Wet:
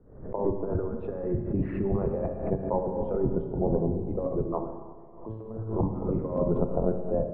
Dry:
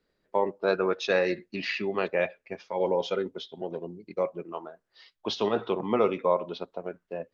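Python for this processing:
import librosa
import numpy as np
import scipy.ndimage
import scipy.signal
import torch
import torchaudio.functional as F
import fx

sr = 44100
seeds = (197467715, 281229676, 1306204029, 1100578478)

y = fx.octave_divider(x, sr, octaves=1, level_db=-2.0)
y = scipy.signal.sosfilt(scipy.signal.butter(4, 1100.0, 'lowpass', fs=sr, output='sos'), y)
y = fx.tilt_eq(y, sr, slope=-2.5)
y = fx.over_compress(y, sr, threshold_db=-27.0, ratio=-0.5)
y = fx.comb_fb(y, sr, f0_hz=110.0, decay_s=0.41, harmonics='all', damping=0.0, mix_pct=90, at=(4.64, 5.79))
y = fx.rev_schroeder(y, sr, rt60_s=1.7, comb_ms=28, drr_db=5.5)
y = fx.pre_swell(y, sr, db_per_s=84.0)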